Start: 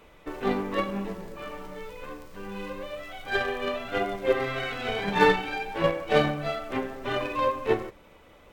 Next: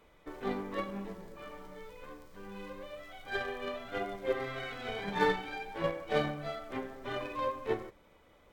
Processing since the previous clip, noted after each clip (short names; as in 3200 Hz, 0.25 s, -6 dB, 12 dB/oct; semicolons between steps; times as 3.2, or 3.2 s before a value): notch 2700 Hz, Q 12; gain -8.5 dB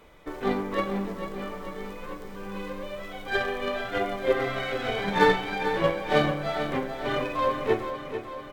feedback echo 0.445 s, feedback 60%, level -9.5 dB; gain +8.5 dB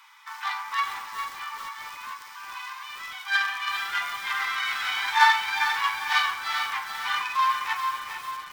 steep high-pass 850 Hz 96 dB/oct; bell 5300 Hz +6.5 dB 0.45 oct; lo-fi delay 0.403 s, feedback 35%, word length 7-bit, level -8.5 dB; gain +5.5 dB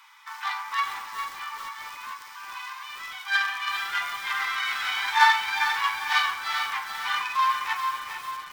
notches 60/120/180/240 Hz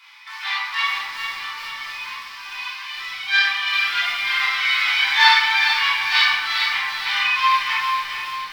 band shelf 3200 Hz +10 dB; reverb RT60 1.0 s, pre-delay 3 ms, DRR -7.5 dB; gain -6 dB